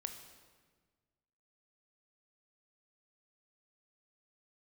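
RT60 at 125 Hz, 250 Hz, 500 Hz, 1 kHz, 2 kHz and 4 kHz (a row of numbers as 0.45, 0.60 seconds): 2.0, 1.8, 1.6, 1.4, 1.3, 1.2 seconds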